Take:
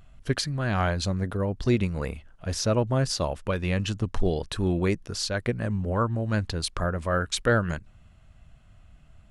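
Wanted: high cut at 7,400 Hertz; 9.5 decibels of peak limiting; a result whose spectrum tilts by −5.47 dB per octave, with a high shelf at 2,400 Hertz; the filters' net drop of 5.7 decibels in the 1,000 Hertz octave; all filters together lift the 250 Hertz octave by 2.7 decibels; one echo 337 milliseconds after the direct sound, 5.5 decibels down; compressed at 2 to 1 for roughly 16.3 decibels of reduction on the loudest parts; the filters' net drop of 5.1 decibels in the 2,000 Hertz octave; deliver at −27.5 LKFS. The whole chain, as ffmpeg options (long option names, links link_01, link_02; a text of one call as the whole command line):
ffmpeg -i in.wav -af "lowpass=7400,equalizer=frequency=250:width_type=o:gain=4,equalizer=frequency=1000:width_type=o:gain=-7,equalizer=frequency=2000:width_type=o:gain=-5.5,highshelf=frequency=2400:gain=3,acompressor=threshold=-47dB:ratio=2,alimiter=level_in=10dB:limit=-24dB:level=0:latency=1,volume=-10dB,aecho=1:1:337:0.531,volume=15dB" out.wav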